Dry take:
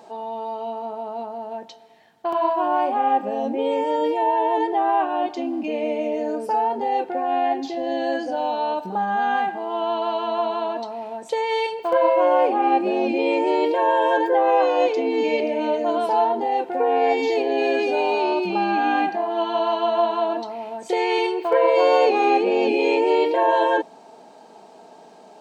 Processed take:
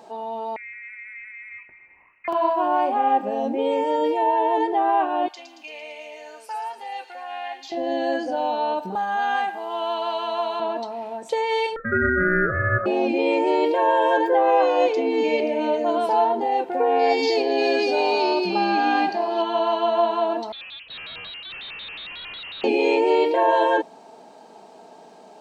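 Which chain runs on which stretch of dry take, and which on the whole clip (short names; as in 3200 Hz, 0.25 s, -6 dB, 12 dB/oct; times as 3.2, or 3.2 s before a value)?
0.56–2.28 compressor 2:1, threshold -43 dBFS + inverted band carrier 2800 Hz
5.28–7.72 HPF 1400 Hz + thin delay 0.113 s, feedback 65%, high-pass 4000 Hz, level -4 dB
8.95–10.6 HPF 630 Hz 6 dB/oct + high shelf 5100 Hz +10 dB
11.76–12.86 inverse Chebyshev low-pass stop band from 2200 Hz + ring modulator 910 Hz
16.99–19.42 bell 4900 Hz +14 dB 0.47 oct + echo 0.967 s -18.5 dB
20.52–22.64 tube stage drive 36 dB, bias 0.6 + inverted band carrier 3700 Hz + shaped vibrato square 5.5 Hz, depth 250 cents
whole clip: dry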